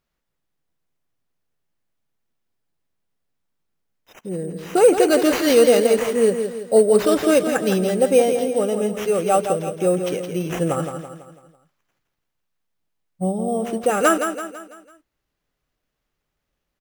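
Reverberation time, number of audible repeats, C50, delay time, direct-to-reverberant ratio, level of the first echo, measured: none, 5, none, 0.166 s, none, -7.5 dB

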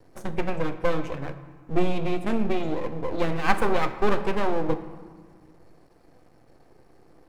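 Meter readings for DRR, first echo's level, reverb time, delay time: 9.5 dB, none, 1.6 s, none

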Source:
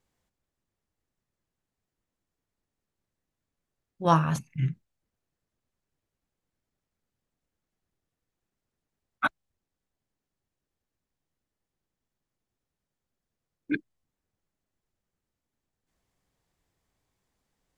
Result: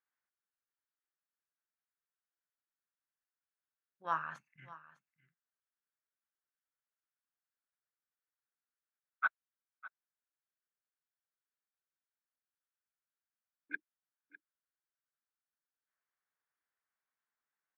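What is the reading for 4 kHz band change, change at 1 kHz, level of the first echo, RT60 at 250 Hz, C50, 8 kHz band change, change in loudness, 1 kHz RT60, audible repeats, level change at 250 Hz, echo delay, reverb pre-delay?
-19.0 dB, -11.0 dB, -18.0 dB, none, none, under -25 dB, -10.5 dB, none, 1, -29.5 dB, 0.604 s, none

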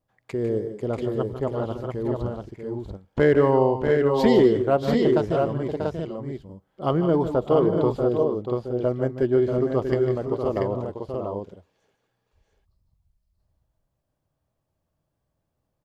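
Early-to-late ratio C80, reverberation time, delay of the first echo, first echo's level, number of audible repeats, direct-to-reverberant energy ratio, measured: none, none, 0.15 s, -11.0 dB, 3, none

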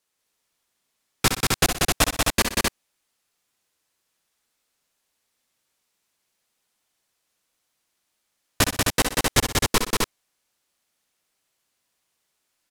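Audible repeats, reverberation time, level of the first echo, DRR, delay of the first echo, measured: 4, none, -7.5 dB, none, 64 ms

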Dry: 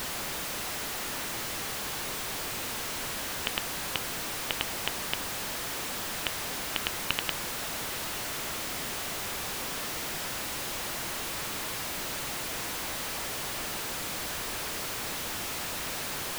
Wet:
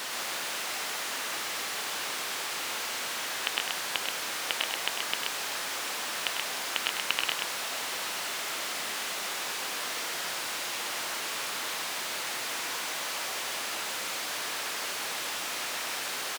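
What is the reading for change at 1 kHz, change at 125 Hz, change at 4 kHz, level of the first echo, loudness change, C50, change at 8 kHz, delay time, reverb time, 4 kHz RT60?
+2.0 dB, -13.5 dB, +3.0 dB, -8.5 dB, +1.0 dB, none, +1.0 dB, 99 ms, none, none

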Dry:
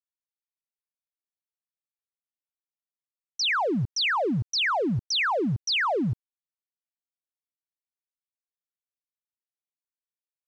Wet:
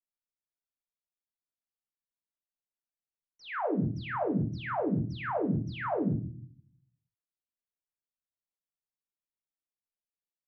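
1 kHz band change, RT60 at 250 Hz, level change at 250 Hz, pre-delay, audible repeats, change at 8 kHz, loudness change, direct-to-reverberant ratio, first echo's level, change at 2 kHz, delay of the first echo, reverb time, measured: -7.0 dB, 0.80 s, -2.0 dB, 3 ms, none, n/a, -7.0 dB, 2.5 dB, none, -13.0 dB, none, 0.45 s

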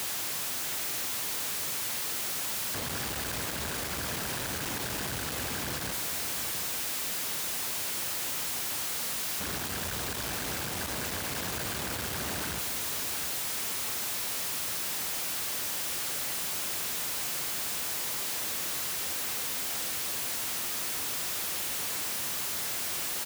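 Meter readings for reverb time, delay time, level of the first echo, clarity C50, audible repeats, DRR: none, 0.716 s, -10.0 dB, none, 1, none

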